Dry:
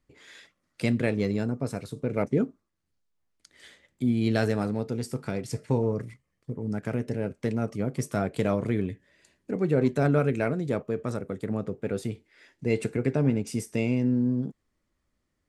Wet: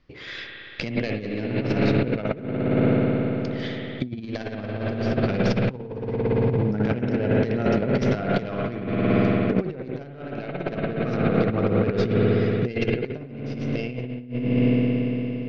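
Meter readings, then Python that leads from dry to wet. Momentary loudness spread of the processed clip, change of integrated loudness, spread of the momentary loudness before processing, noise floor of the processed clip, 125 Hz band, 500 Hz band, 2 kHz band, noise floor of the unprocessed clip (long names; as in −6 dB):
12 LU, +4.0 dB, 9 LU, −39 dBFS, +5.0 dB, +5.0 dB, +6.0 dB, −78 dBFS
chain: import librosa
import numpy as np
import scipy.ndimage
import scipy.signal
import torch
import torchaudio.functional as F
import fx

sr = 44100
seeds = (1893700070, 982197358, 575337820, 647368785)

y = fx.tracing_dist(x, sr, depth_ms=0.16)
y = scipy.signal.sosfilt(scipy.signal.butter(8, 5500.0, 'lowpass', fs=sr, output='sos'), y)
y = fx.peak_eq(y, sr, hz=2800.0, db=2.5, octaves=0.77)
y = fx.notch(y, sr, hz=900.0, q=16.0)
y = fx.rev_spring(y, sr, rt60_s=4.0, pass_ms=(57,), chirp_ms=50, drr_db=-1.0)
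y = fx.over_compress(y, sr, threshold_db=-30.0, ratio=-0.5)
y = F.gain(torch.from_numpy(y), 7.0).numpy()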